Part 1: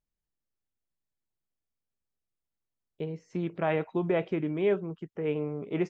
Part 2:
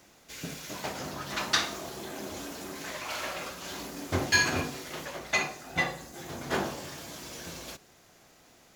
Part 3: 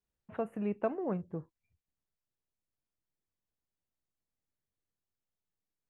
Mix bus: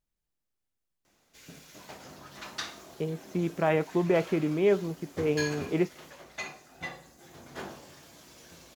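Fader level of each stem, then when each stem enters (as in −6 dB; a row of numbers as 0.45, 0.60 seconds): +2.5 dB, −10.5 dB, muted; 0.00 s, 1.05 s, muted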